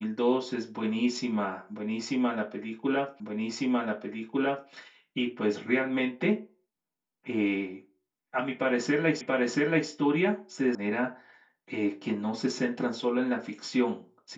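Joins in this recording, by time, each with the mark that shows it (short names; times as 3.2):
3.2 repeat of the last 1.5 s
9.21 repeat of the last 0.68 s
10.75 sound cut off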